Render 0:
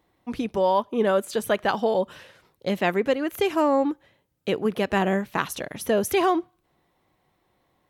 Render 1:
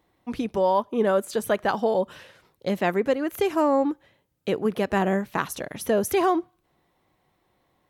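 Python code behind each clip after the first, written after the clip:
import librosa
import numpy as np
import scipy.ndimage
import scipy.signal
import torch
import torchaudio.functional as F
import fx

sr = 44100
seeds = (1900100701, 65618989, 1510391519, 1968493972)

y = fx.dynamic_eq(x, sr, hz=3000.0, q=1.2, threshold_db=-41.0, ratio=4.0, max_db=-5)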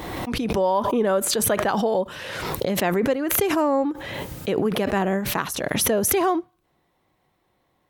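y = fx.pre_swell(x, sr, db_per_s=27.0)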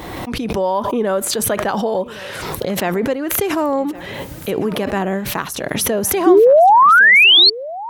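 y = fx.spec_paint(x, sr, seeds[0], shape='rise', start_s=6.26, length_s=1.24, low_hz=320.0, high_hz=4500.0, level_db=-11.0)
y = y + 10.0 ** (-18.5 / 20.0) * np.pad(y, (int(1111 * sr / 1000.0), 0))[:len(y)]
y = y * librosa.db_to_amplitude(2.5)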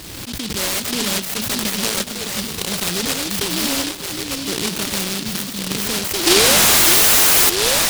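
y = fx.echo_stepped(x, sr, ms=610, hz=210.0, octaves=1.4, feedback_pct=70, wet_db=-0.5)
y = fx.noise_mod_delay(y, sr, seeds[1], noise_hz=3800.0, depth_ms=0.46)
y = y * librosa.db_to_amplitude(-4.0)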